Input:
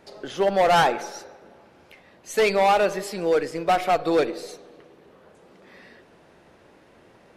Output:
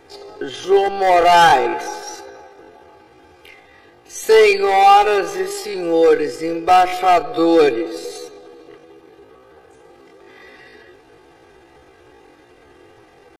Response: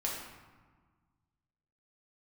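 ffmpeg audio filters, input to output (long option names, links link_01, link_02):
-af "atempo=0.55,aecho=1:1:2.5:0.81,volume=4.5dB"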